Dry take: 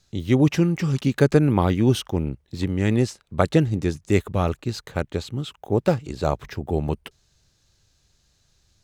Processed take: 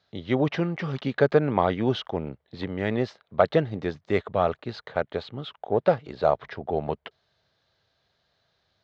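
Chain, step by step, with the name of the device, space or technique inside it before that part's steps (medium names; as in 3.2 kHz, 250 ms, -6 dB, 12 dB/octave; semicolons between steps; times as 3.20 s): overdrive pedal into a guitar cabinet (overdrive pedal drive 11 dB, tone 4.6 kHz, clips at -1.5 dBFS; cabinet simulation 88–3900 Hz, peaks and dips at 320 Hz -4 dB, 470 Hz +3 dB, 660 Hz +7 dB, 2.6 kHz -7 dB); trim -4.5 dB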